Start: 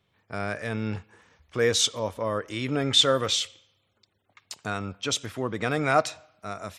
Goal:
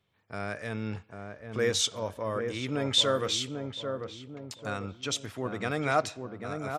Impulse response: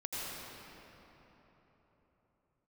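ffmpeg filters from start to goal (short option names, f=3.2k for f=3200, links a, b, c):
-filter_complex "[0:a]asplit=2[a][b];[b]adelay=793,lowpass=f=980:p=1,volume=-5dB,asplit=2[c][d];[d]adelay=793,lowpass=f=980:p=1,volume=0.5,asplit=2[e][f];[f]adelay=793,lowpass=f=980:p=1,volume=0.5,asplit=2[g][h];[h]adelay=793,lowpass=f=980:p=1,volume=0.5,asplit=2[i][j];[j]adelay=793,lowpass=f=980:p=1,volume=0.5,asplit=2[k][l];[l]adelay=793,lowpass=f=980:p=1,volume=0.5[m];[a][c][e][g][i][k][m]amix=inputs=7:normalize=0,volume=-4.5dB"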